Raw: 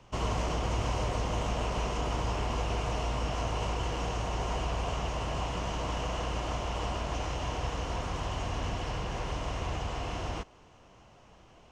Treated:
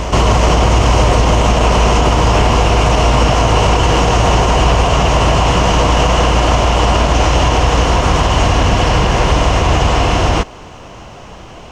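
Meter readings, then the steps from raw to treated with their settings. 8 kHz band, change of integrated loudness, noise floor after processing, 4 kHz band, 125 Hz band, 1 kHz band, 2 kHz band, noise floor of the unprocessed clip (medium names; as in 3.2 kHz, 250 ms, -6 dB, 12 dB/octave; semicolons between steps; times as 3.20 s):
+21.5 dB, +21.5 dB, -34 dBFS, +21.5 dB, +21.0 dB, +21.5 dB, +21.5 dB, -57 dBFS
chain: reverse echo 379 ms -12.5 dB; loudness maximiser +24 dB; trim -1 dB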